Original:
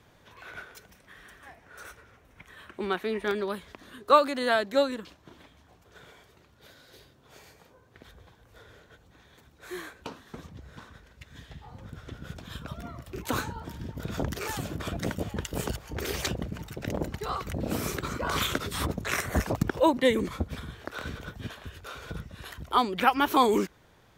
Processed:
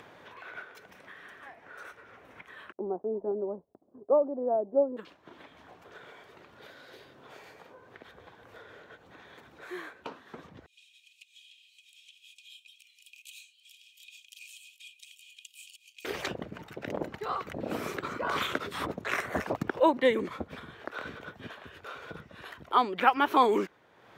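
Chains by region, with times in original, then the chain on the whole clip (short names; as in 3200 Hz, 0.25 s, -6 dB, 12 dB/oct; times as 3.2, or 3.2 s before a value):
2.72–4.97 steep low-pass 780 Hz + expander -43 dBFS
10.66–16.05 rippled Chebyshev high-pass 2400 Hz, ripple 9 dB + notch 3500 Hz, Q 8.5
whole clip: HPF 110 Hz 12 dB/oct; tone controls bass -9 dB, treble -13 dB; upward compressor, threshold -43 dBFS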